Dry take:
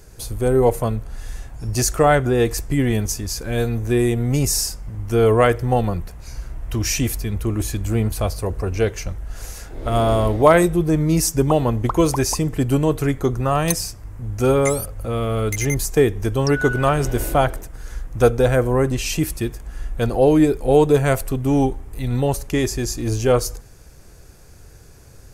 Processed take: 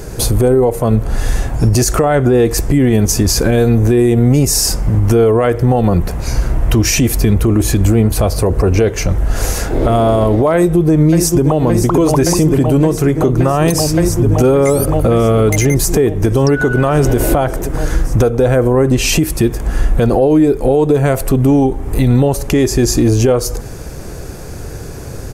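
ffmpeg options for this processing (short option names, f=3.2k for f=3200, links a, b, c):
-filter_complex "[0:a]asplit=2[a][b];[b]afade=t=in:st=10.55:d=0.01,afade=t=out:st=11.6:d=0.01,aecho=0:1:570|1140|1710|2280|2850|3420|3990|4560|5130|5700|6270|6840:0.334965|0.267972|0.214378|0.171502|0.137202|0.109761|0.0878092|0.0702473|0.0561979|0.0449583|0.0359666|0.0287733[c];[a][c]amix=inputs=2:normalize=0,equalizer=f=320:w=0.34:g=7.5,acompressor=threshold=-21dB:ratio=5,alimiter=level_in=17.5dB:limit=-1dB:release=50:level=0:latency=1,volume=-2.5dB"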